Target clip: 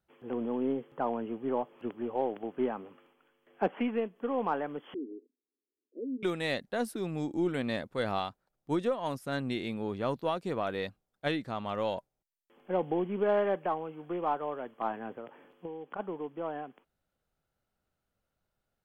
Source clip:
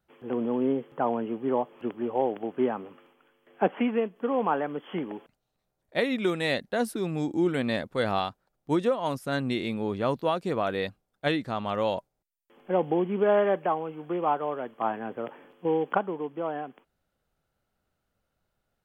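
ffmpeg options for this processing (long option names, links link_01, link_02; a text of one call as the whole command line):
ffmpeg -i in.wav -filter_complex "[0:a]asplit=3[link_01][link_02][link_03];[link_01]afade=type=out:start_time=15.15:duration=0.02[link_04];[link_02]acompressor=threshold=-33dB:ratio=16,afade=type=in:start_time=15.15:duration=0.02,afade=type=out:start_time=15.98:duration=0.02[link_05];[link_03]afade=type=in:start_time=15.98:duration=0.02[link_06];[link_04][link_05][link_06]amix=inputs=3:normalize=0,aeval=exprs='0.299*(cos(1*acos(clip(val(0)/0.299,-1,1)))-cos(1*PI/2))+0.00335*(cos(8*acos(clip(val(0)/0.299,-1,1)))-cos(8*PI/2))':channel_layout=same,asettb=1/sr,asplit=3[link_07][link_08][link_09];[link_07]atrim=end=4.944[link_10];[link_08]atrim=start=4.94:end=6.23,asetpts=PTS-STARTPTS,afade=type=in:duration=0.004:curve=qsin,afade=type=out:start_time=1.286:duration=0.004:curve=qsin,asuperpass=centerf=330:order=8:qfactor=1.7[link_11];[link_09]atrim=start=6.226[link_12];[link_10][link_11]acrossfade=duration=0.004:curve1=hsin:curve2=qsin[link_13];[link_13][link_12]acrossfade=duration=0.004:curve1=qsin:curve2=hsin,volume=-5dB" out.wav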